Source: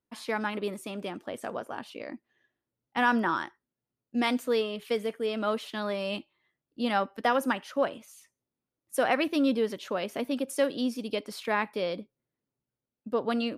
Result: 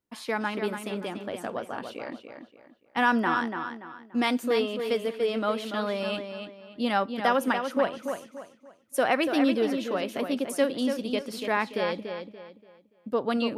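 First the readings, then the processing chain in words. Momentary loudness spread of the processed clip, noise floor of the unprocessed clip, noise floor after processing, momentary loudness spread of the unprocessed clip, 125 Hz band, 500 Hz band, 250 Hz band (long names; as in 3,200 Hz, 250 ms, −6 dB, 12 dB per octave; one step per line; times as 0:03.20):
15 LU, below −85 dBFS, −63 dBFS, 12 LU, +2.5 dB, +2.5 dB, +2.5 dB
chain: feedback echo with a low-pass in the loop 288 ms, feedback 33%, low-pass 5,000 Hz, level −7 dB
level +1.5 dB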